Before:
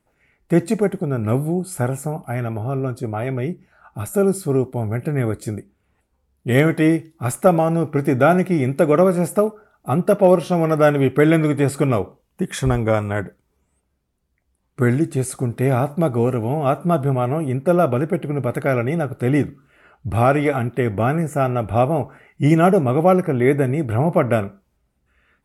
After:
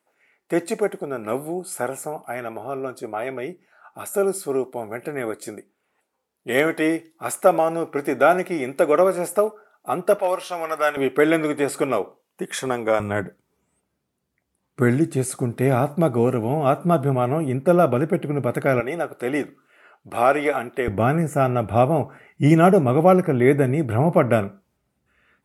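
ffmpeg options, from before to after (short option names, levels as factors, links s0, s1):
-af "asetnsamples=n=441:p=0,asendcmd='10.19 highpass f 870;10.97 highpass f 360;13 highpass f 130;18.8 highpass f 400;20.88 highpass f 100',highpass=400"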